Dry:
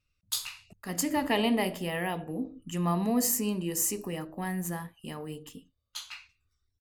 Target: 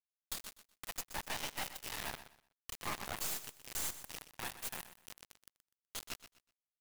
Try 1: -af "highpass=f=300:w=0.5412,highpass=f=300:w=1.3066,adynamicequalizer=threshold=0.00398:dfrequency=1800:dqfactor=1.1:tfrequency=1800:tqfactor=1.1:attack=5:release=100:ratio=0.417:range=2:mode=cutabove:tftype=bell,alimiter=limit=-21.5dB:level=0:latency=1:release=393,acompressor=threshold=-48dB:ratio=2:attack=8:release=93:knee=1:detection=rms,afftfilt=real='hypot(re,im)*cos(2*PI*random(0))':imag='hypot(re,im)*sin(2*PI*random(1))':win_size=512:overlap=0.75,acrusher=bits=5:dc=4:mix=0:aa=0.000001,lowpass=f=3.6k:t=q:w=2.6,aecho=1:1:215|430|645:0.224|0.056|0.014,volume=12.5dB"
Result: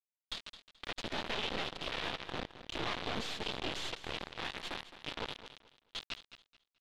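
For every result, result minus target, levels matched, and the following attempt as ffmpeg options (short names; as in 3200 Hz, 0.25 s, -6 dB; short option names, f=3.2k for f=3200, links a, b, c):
echo 91 ms late; 250 Hz band +7.0 dB; 4000 Hz band +5.0 dB
-af "highpass=f=300:w=0.5412,highpass=f=300:w=1.3066,adynamicequalizer=threshold=0.00398:dfrequency=1800:dqfactor=1.1:tfrequency=1800:tqfactor=1.1:attack=5:release=100:ratio=0.417:range=2:mode=cutabove:tftype=bell,alimiter=limit=-21.5dB:level=0:latency=1:release=393,acompressor=threshold=-48dB:ratio=2:attack=8:release=93:knee=1:detection=rms,afftfilt=real='hypot(re,im)*cos(2*PI*random(0))':imag='hypot(re,im)*sin(2*PI*random(1))':win_size=512:overlap=0.75,acrusher=bits=5:dc=4:mix=0:aa=0.000001,lowpass=f=3.6k:t=q:w=2.6,aecho=1:1:124|248|372:0.224|0.056|0.014,volume=12.5dB"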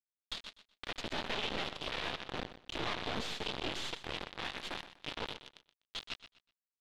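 250 Hz band +7.0 dB; 4000 Hz band +5.0 dB
-af "highpass=f=790:w=0.5412,highpass=f=790:w=1.3066,adynamicequalizer=threshold=0.00398:dfrequency=1800:dqfactor=1.1:tfrequency=1800:tqfactor=1.1:attack=5:release=100:ratio=0.417:range=2:mode=cutabove:tftype=bell,alimiter=limit=-21.5dB:level=0:latency=1:release=393,acompressor=threshold=-48dB:ratio=2:attack=8:release=93:knee=1:detection=rms,afftfilt=real='hypot(re,im)*cos(2*PI*random(0))':imag='hypot(re,im)*sin(2*PI*random(1))':win_size=512:overlap=0.75,acrusher=bits=5:dc=4:mix=0:aa=0.000001,lowpass=f=3.6k:t=q:w=2.6,aecho=1:1:124|248|372:0.224|0.056|0.014,volume=12.5dB"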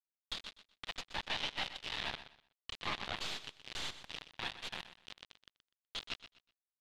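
4000 Hz band +5.5 dB
-af "highpass=f=790:w=0.5412,highpass=f=790:w=1.3066,adynamicequalizer=threshold=0.00398:dfrequency=1800:dqfactor=1.1:tfrequency=1800:tqfactor=1.1:attack=5:release=100:ratio=0.417:range=2:mode=cutabove:tftype=bell,alimiter=limit=-21.5dB:level=0:latency=1:release=393,acompressor=threshold=-48dB:ratio=2:attack=8:release=93:knee=1:detection=rms,afftfilt=real='hypot(re,im)*cos(2*PI*random(0))':imag='hypot(re,im)*sin(2*PI*random(1))':win_size=512:overlap=0.75,acrusher=bits=5:dc=4:mix=0:aa=0.000001,aecho=1:1:124|248|372:0.224|0.056|0.014,volume=12.5dB"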